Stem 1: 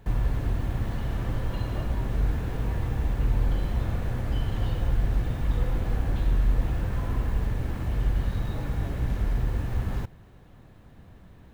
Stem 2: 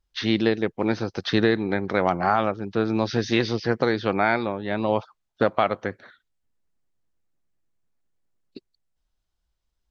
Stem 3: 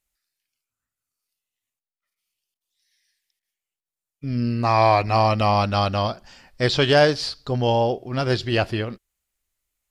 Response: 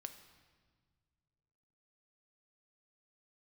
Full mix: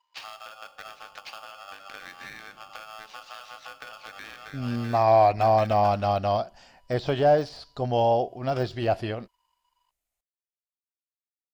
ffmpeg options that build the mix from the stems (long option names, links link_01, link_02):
-filter_complex "[1:a]acompressor=threshold=-30dB:ratio=10,bandreject=frequency=50:width_type=h:width=6,bandreject=frequency=100:width_type=h:width=6,bandreject=frequency=150:width_type=h:width=6,bandreject=frequency=200:width_type=h:width=6,bandreject=frequency=250:width_type=h:width=6,bandreject=frequency=300:width_type=h:width=6,bandreject=frequency=350:width_type=h:width=6,bandreject=frequency=400:width_type=h:width=6,bandreject=frequency=450:width_type=h:width=6,aeval=exprs='val(0)*sgn(sin(2*PI*980*n/s))':channel_layout=same,volume=1.5dB,asplit=2[link_01][link_02];[link_02]volume=-11dB[link_03];[2:a]deesser=0.85,equalizer=frequency=690:width=2.5:gain=10.5,adelay=300,volume=-6.5dB[link_04];[link_01]highpass=710,lowpass=5100,acompressor=threshold=-42dB:ratio=6,volume=0dB[link_05];[3:a]atrim=start_sample=2205[link_06];[link_03][link_06]afir=irnorm=-1:irlink=0[link_07];[link_04][link_05][link_07]amix=inputs=3:normalize=0"